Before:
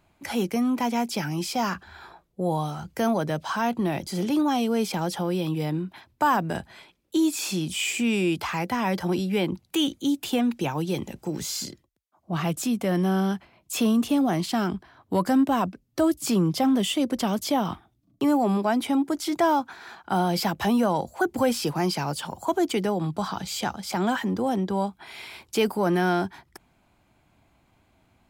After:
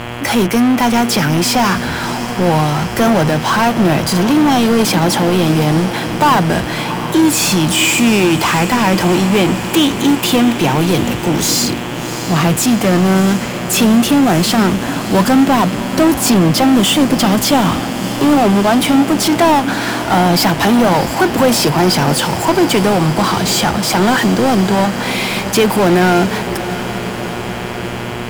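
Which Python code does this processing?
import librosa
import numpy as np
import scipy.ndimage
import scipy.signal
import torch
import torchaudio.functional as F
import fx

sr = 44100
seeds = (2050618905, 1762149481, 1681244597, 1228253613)

y = fx.power_curve(x, sr, exponent=0.5)
y = fx.echo_diffused(y, sr, ms=682, feedback_pct=74, wet_db=-12.0)
y = fx.dmg_buzz(y, sr, base_hz=120.0, harmonics=28, level_db=-33.0, tilt_db=-3, odd_only=False)
y = y * librosa.db_to_amplitude(6.5)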